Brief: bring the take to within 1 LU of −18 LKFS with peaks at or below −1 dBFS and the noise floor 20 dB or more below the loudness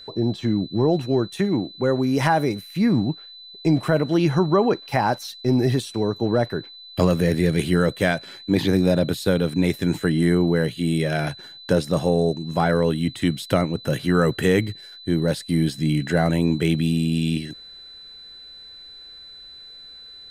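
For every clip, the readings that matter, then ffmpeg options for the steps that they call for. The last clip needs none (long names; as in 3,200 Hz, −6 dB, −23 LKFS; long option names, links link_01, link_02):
interfering tone 4,000 Hz; level of the tone −40 dBFS; integrated loudness −22.0 LKFS; sample peak −5.5 dBFS; target loudness −18.0 LKFS
→ -af "bandreject=frequency=4000:width=30"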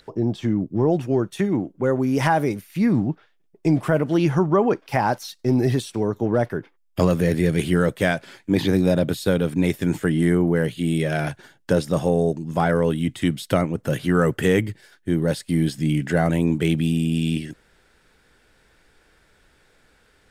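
interfering tone none found; integrated loudness −22.0 LKFS; sample peak −5.5 dBFS; target loudness −18.0 LKFS
→ -af "volume=4dB"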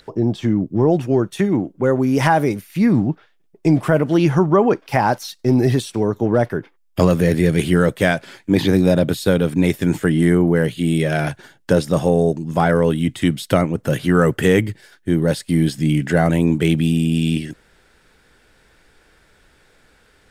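integrated loudness −18.0 LKFS; sample peak −1.5 dBFS; background noise floor −57 dBFS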